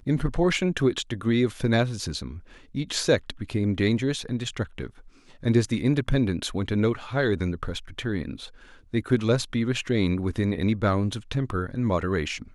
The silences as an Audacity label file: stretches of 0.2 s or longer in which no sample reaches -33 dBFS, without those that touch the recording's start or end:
2.380000	2.750000	silence
4.870000	5.430000	silence
8.460000	8.940000	silence